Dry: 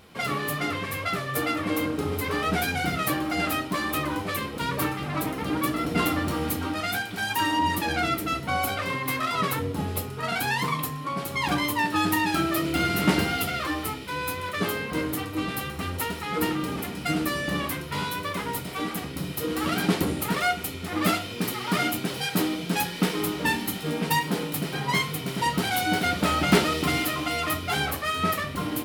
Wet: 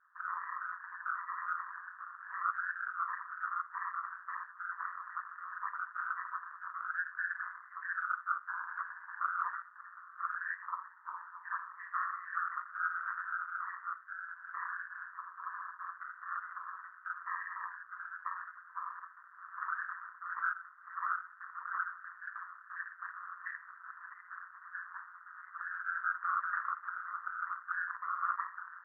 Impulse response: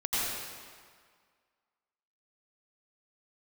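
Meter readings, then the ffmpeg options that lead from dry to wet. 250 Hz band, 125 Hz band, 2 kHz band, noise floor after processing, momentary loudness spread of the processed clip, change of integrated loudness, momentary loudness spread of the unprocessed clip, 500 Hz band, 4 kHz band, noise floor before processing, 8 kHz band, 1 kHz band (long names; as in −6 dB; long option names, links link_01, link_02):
below −40 dB, below −40 dB, −9.0 dB, −56 dBFS, 10 LU, −13.0 dB, 6 LU, below −40 dB, below −40 dB, −35 dBFS, below −40 dB, −9.5 dB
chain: -filter_complex "[0:a]asuperpass=centerf=1400:order=20:qfactor=2.3[link_01];[1:a]atrim=start_sample=2205,atrim=end_sample=3528[link_02];[link_01][link_02]afir=irnorm=-1:irlink=0,afftfilt=real='hypot(re,im)*cos(2*PI*random(0))':imag='hypot(re,im)*sin(2*PI*random(1))':win_size=512:overlap=0.75,aeval=exprs='val(0)*sin(2*PI*89*n/s)':channel_layout=same,volume=5dB"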